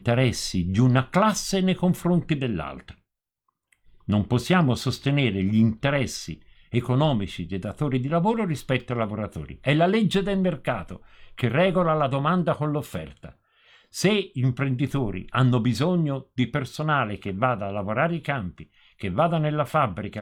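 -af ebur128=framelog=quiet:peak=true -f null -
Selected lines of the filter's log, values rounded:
Integrated loudness:
  I:         -24.1 LUFS
  Threshold: -34.7 LUFS
Loudness range:
  LRA:         2.4 LU
  Threshold: -45.0 LUFS
  LRA low:   -26.1 LUFS
  LRA high:  -23.6 LUFS
True peak:
  Peak:       -6.7 dBFS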